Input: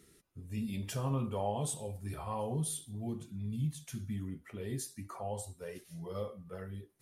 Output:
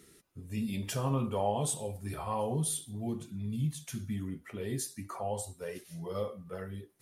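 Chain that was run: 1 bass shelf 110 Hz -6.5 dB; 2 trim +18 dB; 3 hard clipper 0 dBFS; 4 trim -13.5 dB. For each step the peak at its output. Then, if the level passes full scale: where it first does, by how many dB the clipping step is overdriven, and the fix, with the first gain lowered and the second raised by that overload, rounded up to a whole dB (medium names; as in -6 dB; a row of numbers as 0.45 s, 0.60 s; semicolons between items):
-23.0 dBFS, -5.0 dBFS, -5.0 dBFS, -18.5 dBFS; nothing clips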